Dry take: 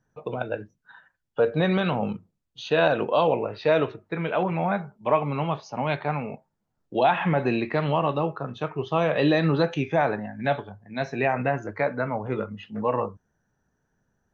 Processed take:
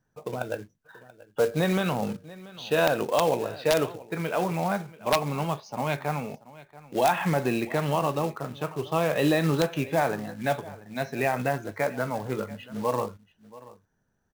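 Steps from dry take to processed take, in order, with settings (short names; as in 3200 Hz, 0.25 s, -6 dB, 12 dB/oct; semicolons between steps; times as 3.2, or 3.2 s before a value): echo 0.683 s -19.5 dB; short-mantissa float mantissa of 2-bit; wrapped overs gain 10.5 dB; gain -2 dB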